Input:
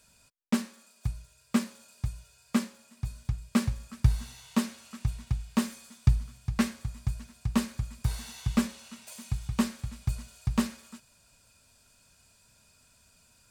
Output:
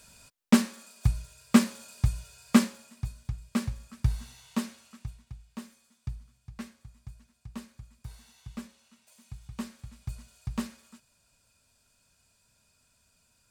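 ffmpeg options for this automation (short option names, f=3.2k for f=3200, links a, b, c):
-af "volume=15.5dB,afade=t=out:st=2.64:d=0.51:silence=0.298538,afade=t=out:st=4.69:d=0.54:silence=0.281838,afade=t=in:st=9.11:d=1.25:silence=0.375837"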